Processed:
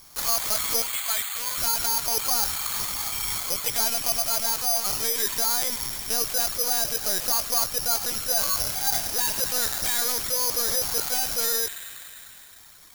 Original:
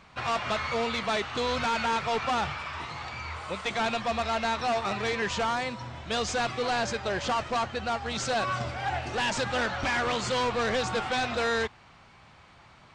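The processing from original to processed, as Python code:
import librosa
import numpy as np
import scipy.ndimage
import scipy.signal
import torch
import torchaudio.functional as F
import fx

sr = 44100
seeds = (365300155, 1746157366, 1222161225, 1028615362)

y = fx.highpass(x, sr, hz=1100.0, slope=12, at=(0.81, 1.59))
y = fx.rider(y, sr, range_db=4, speed_s=0.5)
y = fx.echo_wet_highpass(y, sr, ms=99, feedback_pct=82, hz=2000.0, wet_db=-5.5)
y = fx.lpc_vocoder(y, sr, seeds[0], excitation='pitch_kept', order=16)
y = (np.kron(scipy.signal.resample_poly(y, 1, 8), np.eye(8)[0]) * 8)[:len(y)]
y = y * librosa.db_to_amplitude(-5.0)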